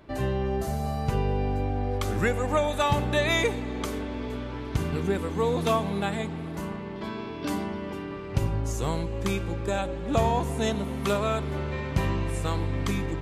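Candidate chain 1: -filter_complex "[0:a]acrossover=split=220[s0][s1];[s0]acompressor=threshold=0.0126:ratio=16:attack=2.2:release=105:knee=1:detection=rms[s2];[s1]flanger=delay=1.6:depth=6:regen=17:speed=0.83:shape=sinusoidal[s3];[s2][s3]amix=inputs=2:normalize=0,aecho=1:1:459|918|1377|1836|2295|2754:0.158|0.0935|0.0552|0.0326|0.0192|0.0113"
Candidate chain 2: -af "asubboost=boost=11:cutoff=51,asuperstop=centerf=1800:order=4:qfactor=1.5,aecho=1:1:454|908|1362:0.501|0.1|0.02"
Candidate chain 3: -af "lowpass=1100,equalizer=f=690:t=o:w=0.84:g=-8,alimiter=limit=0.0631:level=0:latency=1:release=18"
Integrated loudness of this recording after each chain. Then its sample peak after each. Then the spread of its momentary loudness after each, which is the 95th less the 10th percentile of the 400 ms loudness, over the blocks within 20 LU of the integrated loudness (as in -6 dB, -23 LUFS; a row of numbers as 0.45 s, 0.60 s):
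-33.0 LUFS, -24.0 LUFS, -33.0 LUFS; -14.0 dBFS, -6.0 dBFS, -24.0 dBFS; 10 LU, 13 LU, 4 LU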